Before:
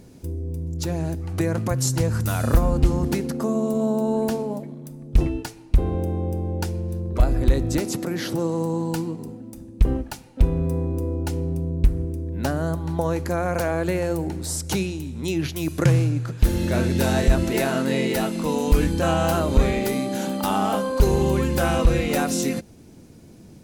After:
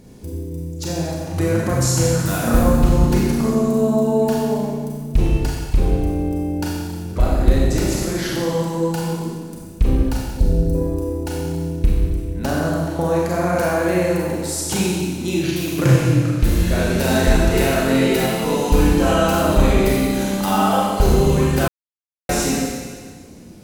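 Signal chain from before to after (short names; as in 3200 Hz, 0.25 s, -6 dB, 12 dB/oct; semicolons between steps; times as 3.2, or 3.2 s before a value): 10.24–10.75 elliptic band-stop 700–4300 Hz; Schroeder reverb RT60 1.6 s, combs from 30 ms, DRR -4.5 dB; 21.68–22.29 mute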